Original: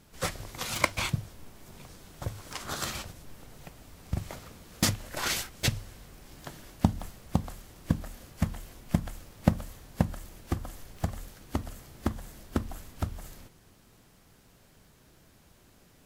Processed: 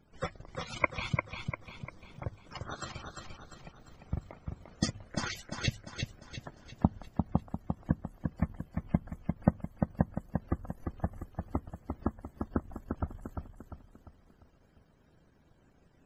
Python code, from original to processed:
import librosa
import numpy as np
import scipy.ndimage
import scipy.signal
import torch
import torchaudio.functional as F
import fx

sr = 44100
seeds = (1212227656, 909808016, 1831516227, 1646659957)

p1 = fx.spec_topn(x, sr, count=64)
p2 = fx.hum_notches(p1, sr, base_hz=50, count=2)
p3 = fx.transient(p2, sr, attack_db=3, sustain_db=-10)
p4 = p3 + fx.echo_feedback(p3, sr, ms=348, feedback_pct=44, wet_db=-5.0, dry=0)
y = F.gain(torch.from_numpy(p4), -5.0).numpy()